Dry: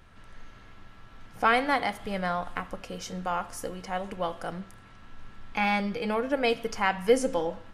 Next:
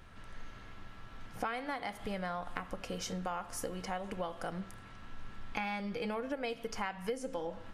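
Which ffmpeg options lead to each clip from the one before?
ffmpeg -i in.wav -af "acompressor=threshold=-34dB:ratio=8" out.wav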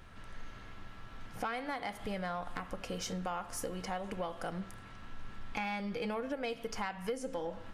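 ffmpeg -i in.wav -af "asoftclip=type=tanh:threshold=-26.5dB,volume=1dB" out.wav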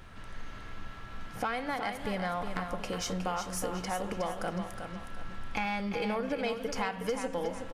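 ffmpeg -i in.wav -af "aecho=1:1:365|730|1095|1460:0.422|0.156|0.0577|0.0214,volume=4dB" out.wav

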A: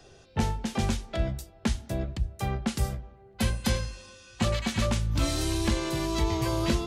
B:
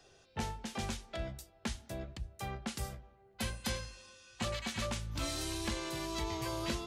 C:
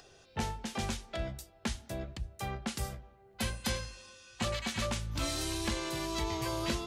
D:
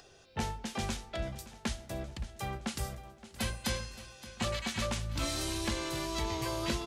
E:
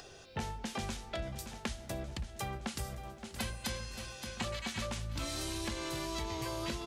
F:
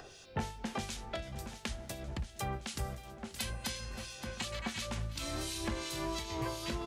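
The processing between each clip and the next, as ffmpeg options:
ffmpeg -i in.wav -af "lowshelf=frequency=440:gain=-7.5,volume=-6dB" out.wav
ffmpeg -i in.wav -af "acompressor=mode=upward:threshold=-58dB:ratio=2.5,volume=3dB" out.wav
ffmpeg -i in.wav -af "aecho=1:1:570|1140|1710|2280|2850|3420:0.158|0.0935|0.0552|0.0326|0.0192|0.0113" out.wav
ffmpeg -i in.wav -af "acompressor=threshold=-42dB:ratio=4,volume=5.5dB" out.wav
ffmpeg -i in.wav -filter_complex "[0:a]acrossover=split=2200[link_01][link_02];[link_01]aeval=exprs='val(0)*(1-0.7/2+0.7/2*cos(2*PI*2.8*n/s))':channel_layout=same[link_03];[link_02]aeval=exprs='val(0)*(1-0.7/2-0.7/2*cos(2*PI*2.8*n/s))':channel_layout=same[link_04];[link_03][link_04]amix=inputs=2:normalize=0,volume=3.5dB" out.wav

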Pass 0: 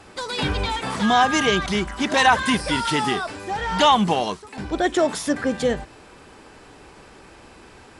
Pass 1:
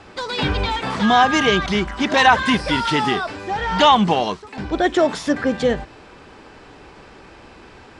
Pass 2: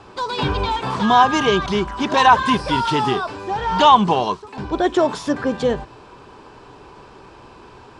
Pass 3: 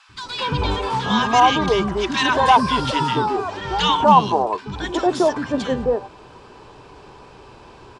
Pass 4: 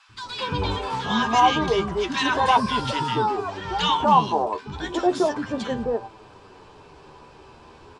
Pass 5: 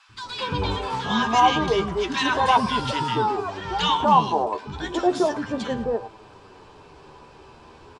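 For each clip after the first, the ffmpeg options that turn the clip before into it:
ffmpeg -i in.wav -af "lowpass=5300,volume=3dB" out.wav
ffmpeg -i in.wav -af "equalizer=frequency=125:width_type=o:width=0.33:gain=7,equalizer=frequency=400:width_type=o:width=0.33:gain=5,equalizer=frequency=1000:width_type=o:width=0.33:gain=9,equalizer=frequency=2000:width_type=o:width=0.33:gain=-7,volume=-2dB" out.wav
ffmpeg -i in.wav -filter_complex "[0:a]acrossover=split=280|1300[link_01][link_02][link_03];[link_01]adelay=90[link_04];[link_02]adelay=230[link_05];[link_04][link_05][link_03]amix=inputs=3:normalize=0,volume=1dB" out.wav
ffmpeg -i in.wav -af "flanger=delay=8.8:depth=4.4:regen=41:speed=0.34:shape=sinusoidal" out.wav
ffmpeg -i in.wav -af "aecho=1:1:109:0.119" out.wav

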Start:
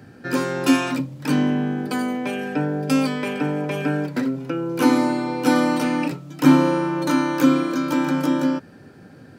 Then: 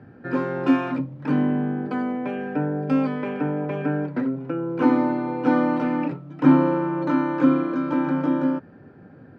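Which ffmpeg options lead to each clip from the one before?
ffmpeg -i in.wav -af "lowpass=1600,volume=-1.5dB" out.wav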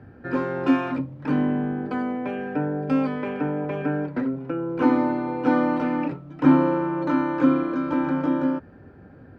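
ffmpeg -i in.wav -af "lowshelf=frequency=100:width_type=q:width=1.5:gain=9" out.wav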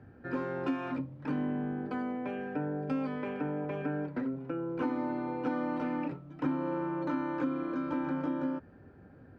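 ffmpeg -i in.wav -af "acompressor=threshold=-21dB:ratio=6,volume=-7.5dB" out.wav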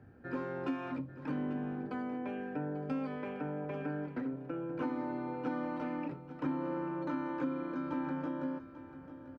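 ffmpeg -i in.wav -af "aecho=1:1:842:0.2,volume=-3.5dB" out.wav

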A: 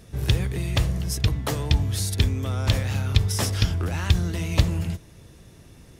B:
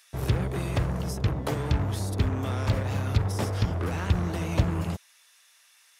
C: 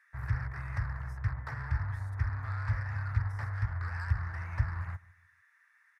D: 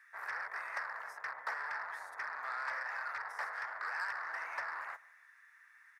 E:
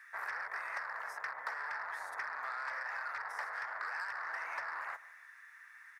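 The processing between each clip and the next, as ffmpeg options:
ffmpeg -i in.wav -filter_complex "[0:a]acrossover=split=1100[link_01][link_02];[link_01]acrusher=bits=4:mix=0:aa=0.5[link_03];[link_02]acompressor=threshold=-40dB:ratio=6[link_04];[link_03][link_04]amix=inputs=2:normalize=0,highpass=frequency=110:poles=1" out.wav
ffmpeg -i in.wav -filter_complex "[0:a]firequalizer=gain_entry='entry(120,0);entry(180,-21);entry(380,-24);entry(930,-2);entry(1800,10);entry(2900,-21)':delay=0.05:min_phase=1,aecho=1:1:149|298|447:0.075|0.0277|0.0103,acrossover=split=260|970[link_01][link_02][link_03];[link_03]asoftclip=type=tanh:threshold=-33.5dB[link_04];[link_01][link_02][link_04]amix=inputs=3:normalize=0,volume=-5.5dB" out.wav
ffmpeg -i in.wav -af "highpass=frequency=500:width=0.5412,highpass=frequency=500:width=1.3066,volume=4.5dB" out.wav
ffmpeg -i in.wav -af "acompressor=threshold=-43dB:ratio=6,volume=6dB" out.wav

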